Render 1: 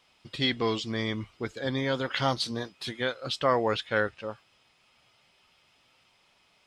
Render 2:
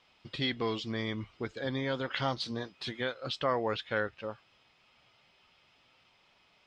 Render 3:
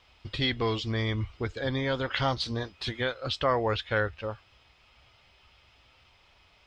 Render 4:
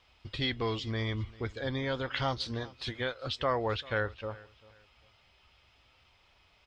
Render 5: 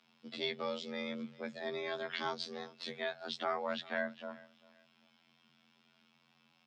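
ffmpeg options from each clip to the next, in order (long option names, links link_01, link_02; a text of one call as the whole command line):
ffmpeg -i in.wav -filter_complex "[0:a]lowpass=5000,asplit=2[link_01][link_02];[link_02]acompressor=threshold=-35dB:ratio=6,volume=2dB[link_03];[link_01][link_03]amix=inputs=2:normalize=0,volume=-7.5dB" out.wav
ffmpeg -i in.wav -af "lowshelf=frequency=110:width_type=q:width=1.5:gain=12.5,volume=4.5dB" out.wav
ffmpeg -i in.wav -af "aecho=1:1:394|788:0.0841|0.0236,volume=-4dB" out.wav
ffmpeg -i in.wav -af "afftfilt=real='hypot(re,im)*cos(PI*b)':imag='0':win_size=2048:overlap=0.75,afreqshift=140,volume=-2dB" out.wav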